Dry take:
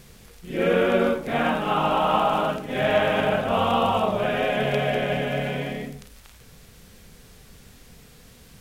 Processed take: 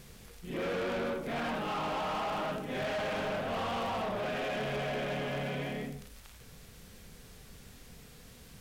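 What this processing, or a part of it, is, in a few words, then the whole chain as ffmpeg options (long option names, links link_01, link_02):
saturation between pre-emphasis and de-emphasis: -af "highshelf=frequency=4800:gain=9,asoftclip=type=tanh:threshold=-28dB,highshelf=frequency=4800:gain=-9,volume=-3.5dB"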